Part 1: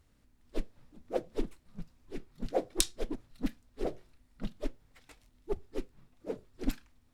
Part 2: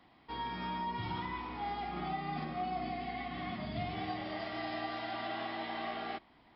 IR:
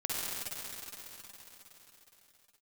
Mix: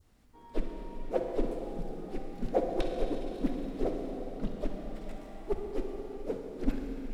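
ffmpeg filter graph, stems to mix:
-filter_complex "[0:a]acrossover=split=2600[link_01][link_02];[link_02]acompressor=threshold=-60dB:ratio=4:attack=1:release=60[link_03];[link_01][link_03]amix=inputs=2:normalize=0,volume=-1.5dB,asplit=2[link_04][link_05];[link_05]volume=-3.5dB[link_06];[1:a]bandpass=frequency=380:width_type=q:width=0.77:csg=0,adelay=50,volume=-10dB[link_07];[2:a]atrim=start_sample=2205[link_08];[link_06][link_08]afir=irnorm=-1:irlink=0[link_09];[link_04][link_07][link_09]amix=inputs=3:normalize=0,adynamicequalizer=threshold=0.002:dfrequency=2000:dqfactor=1:tfrequency=2000:tqfactor=1:attack=5:release=100:ratio=0.375:range=2.5:mode=cutabove:tftype=bell"

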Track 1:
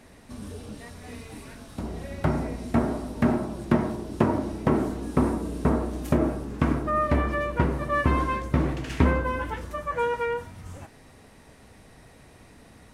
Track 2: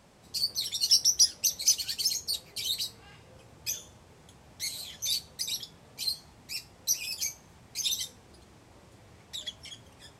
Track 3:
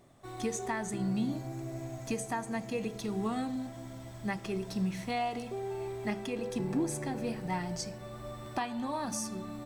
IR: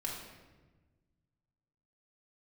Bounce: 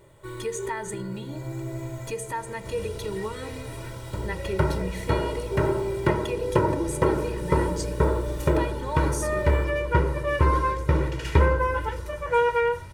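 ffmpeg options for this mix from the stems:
-filter_complex "[0:a]adelay=2350,volume=-0.5dB[link_01];[2:a]equalizer=frequency=5500:width=2.3:gain=-8.5,volume=-1dB,acontrast=71,alimiter=limit=-23.5dB:level=0:latency=1:release=178,volume=0dB[link_02];[link_01][link_02]amix=inputs=2:normalize=0,asuperstop=centerf=750:order=4:qfactor=7.6,aecho=1:1:2.1:0.88"

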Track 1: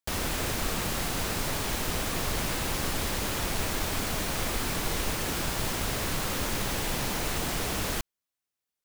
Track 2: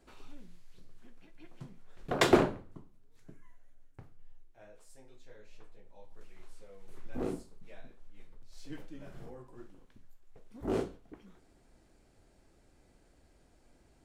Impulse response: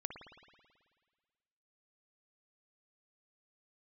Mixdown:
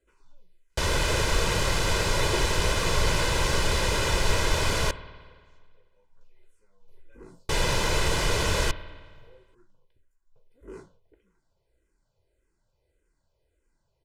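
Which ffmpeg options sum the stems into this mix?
-filter_complex "[0:a]lowpass=7500,adelay=700,volume=1.5dB,asplit=3[link_01][link_02][link_03];[link_01]atrim=end=4.91,asetpts=PTS-STARTPTS,afade=type=out:start_time=4.906:duration=0.004:curve=hsin[link_04];[link_02]atrim=start=4.91:end=7.49,asetpts=PTS-STARTPTS,volume=0[link_05];[link_03]atrim=start=7.49,asetpts=PTS-STARTPTS,afade=type=in:duration=0.004:curve=hsin[link_06];[link_04][link_05][link_06]concat=n=3:v=0:a=1,asplit=2[link_07][link_08];[link_08]volume=-5dB[link_09];[1:a]asplit=2[link_10][link_11];[link_11]afreqshift=-1.7[link_12];[link_10][link_12]amix=inputs=2:normalize=1,volume=-8.5dB[link_13];[2:a]atrim=start_sample=2205[link_14];[link_09][link_14]afir=irnorm=-1:irlink=0[link_15];[link_07][link_13][link_15]amix=inputs=3:normalize=0,aecho=1:1:2:0.64"

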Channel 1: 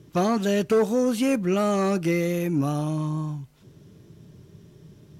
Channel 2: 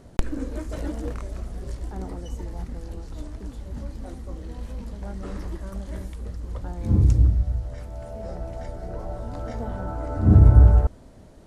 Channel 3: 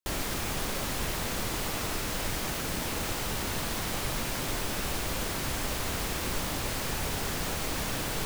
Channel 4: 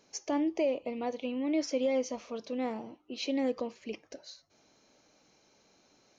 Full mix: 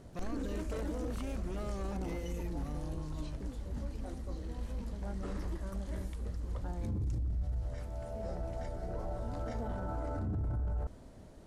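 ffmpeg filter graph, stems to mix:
ffmpeg -i stem1.wav -i stem2.wav -i stem3.wav -i stem4.wav -filter_complex "[0:a]asoftclip=type=hard:threshold=-20dB,volume=-18dB[link_01];[1:a]volume=-5dB[link_02];[3:a]acompressor=threshold=-37dB:ratio=6,adelay=50,volume=-17.5dB[link_03];[link_01][link_02][link_03]amix=inputs=3:normalize=0,alimiter=level_in=5.5dB:limit=-24dB:level=0:latency=1:release=14,volume=-5.5dB" out.wav

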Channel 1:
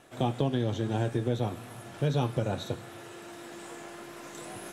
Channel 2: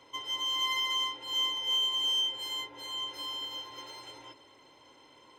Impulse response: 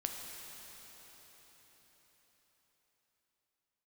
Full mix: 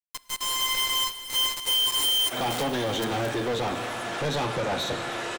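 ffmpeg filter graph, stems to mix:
-filter_complex "[0:a]lowpass=8400,flanger=delay=3.1:depth=1.4:regen=89:speed=1.8:shape=triangular,asplit=2[link_01][link_02];[link_02]highpass=frequency=720:poles=1,volume=29dB,asoftclip=type=tanh:threshold=-19.5dB[link_03];[link_01][link_03]amix=inputs=2:normalize=0,lowpass=frequency=5700:poles=1,volume=-6dB,adelay=2200,volume=-8dB,asplit=2[link_04][link_05];[link_05]volume=-5.5dB[link_06];[1:a]highpass=44,acrusher=bits=4:mix=0:aa=0.000001,volume=2dB,asplit=2[link_07][link_08];[link_08]volume=-12.5dB[link_09];[2:a]atrim=start_sample=2205[link_10];[link_06][link_09]amix=inputs=2:normalize=0[link_11];[link_11][link_10]afir=irnorm=-1:irlink=0[link_12];[link_04][link_07][link_12]amix=inputs=3:normalize=0,dynaudnorm=framelen=120:gausssize=11:maxgain=5.5dB,asoftclip=type=tanh:threshold=-20dB"

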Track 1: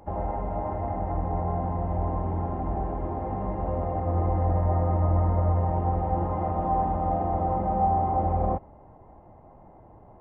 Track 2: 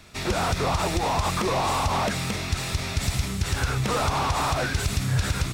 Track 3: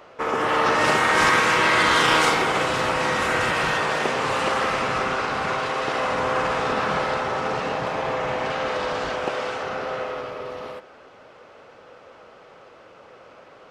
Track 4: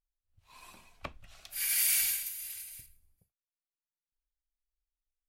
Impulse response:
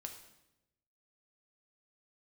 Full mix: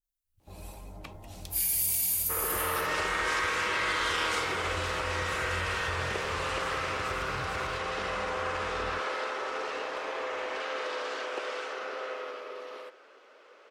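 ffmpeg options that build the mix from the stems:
-filter_complex "[0:a]flanger=delay=18:depth=4.4:speed=2.4,adelay=400,volume=-12dB[link_01];[1:a]adelay=2250,volume=-17.5dB[link_02];[2:a]highpass=frequency=350:width=0.5412,highpass=frequency=350:width=1.3066,adelay=2100,volume=-5.5dB[link_03];[3:a]alimiter=level_in=2dB:limit=-24dB:level=0:latency=1,volume=-2dB,crystalizer=i=1.5:c=0,adynamicequalizer=threshold=0.00251:dfrequency=2000:dqfactor=0.7:tfrequency=2000:tqfactor=0.7:attack=5:release=100:ratio=0.375:range=3.5:mode=boostabove:tftype=highshelf,volume=-3.5dB[link_04];[link_01][link_02][link_03][link_04]amix=inputs=4:normalize=0,equalizer=frequency=760:width=1.9:gain=-7.5,acompressor=threshold=-29dB:ratio=2"

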